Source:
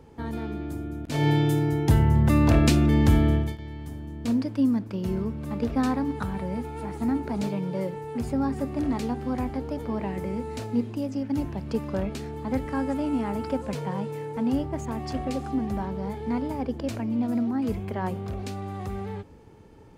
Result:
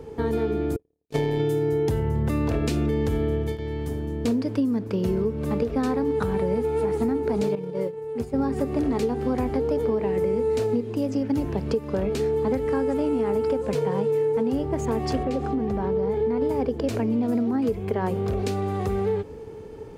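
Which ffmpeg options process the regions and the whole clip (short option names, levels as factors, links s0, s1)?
-filter_complex "[0:a]asettb=1/sr,asplit=3[s0][s1][s2];[s0]atrim=end=0.764[s3];[s1]atrim=start=0.76:end=1.4,asetpts=PTS-STARTPTS,afade=t=in:d=0.004:c=qsin,afade=t=out:st=0.636:d=0.004:c=qsin,bandreject=f=1400:w=23,agate=range=0.00141:threshold=0.0398:ratio=16:release=100:detection=peak,tremolo=f=110:d=0.519[s4];[s2]atrim=start=1.396[s5];[s3][s4]acrossfade=d=0.004:c1=hsin:c2=qsin[s6];[s6][s5]acrossfade=d=0.004:c1=qsin:c2=hsin,asettb=1/sr,asplit=3[s7][s8][s9];[s7]atrim=end=7.554[s10];[s8]atrim=start=7.55:end=8.39,asetpts=PTS-STARTPTS,afade=t=in:d=0.004:c=qsin,afade=t=out:st=0.836:d=0.004:c=qsin,agate=range=0.0224:threshold=0.0794:ratio=3:release=100:detection=peak,acompressor=mode=upward:threshold=0.0126:ratio=2.5:attack=3.2:release=140:knee=2.83:detection=peak[s11];[s9]atrim=start=8.386[s12];[s10][s11]acrossfade=d=0.004:c1=hsin:c2=qsin[s13];[s13][s12]acrossfade=d=0.004:c1=qsin:c2=hsin,asettb=1/sr,asplit=3[s14][s15][s16];[s14]atrim=end=15.234[s17];[s15]atrim=start=15.23:end=16.42,asetpts=PTS-STARTPTS,afade=t=in:d=0.004:c=qsin,afade=t=out:st=1.186:d=0.004:c=qsin,lowpass=f=2900:p=1,acompressor=threshold=0.0282:ratio=2:attack=3.2:release=140:knee=1:detection=peak[s18];[s16]atrim=start=16.416[s19];[s17][s18]acrossfade=d=0.004:c1=hsin:c2=qsin[s20];[s20][s19]acrossfade=d=0.004:c1=qsin:c2=hsin,equalizer=f=440:t=o:w=0.31:g=13,alimiter=limit=0.178:level=0:latency=1:release=499,acompressor=threshold=0.0447:ratio=6,volume=2.11"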